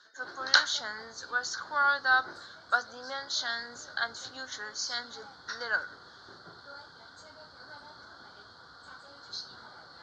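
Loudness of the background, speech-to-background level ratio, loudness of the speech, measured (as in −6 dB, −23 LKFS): −47.5 LKFS, 17.5 dB, −30.0 LKFS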